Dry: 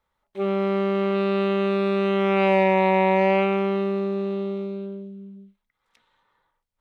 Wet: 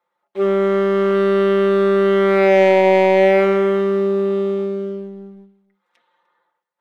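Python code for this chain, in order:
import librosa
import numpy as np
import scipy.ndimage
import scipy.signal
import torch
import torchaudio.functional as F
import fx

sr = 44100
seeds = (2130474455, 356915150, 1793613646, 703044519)

y = scipy.signal.sosfilt(scipy.signal.butter(2, 340.0, 'highpass', fs=sr, output='sos'), x)
y = fx.high_shelf(y, sr, hz=2800.0, db=-12.0)
y = y + 0.77 * np.pad(y, (int(5.7 * sr / 1000.0), 0))[:len(y)]
y = fx.leveller(y, sr, passes=1)
y = y + 10.0 ** (-20.5 / 20.0) * np.pad(y, (int(300 * sr / 1000.0), 0))[:len(y)]
y = y * librosa.db_to_amplitude(5.0)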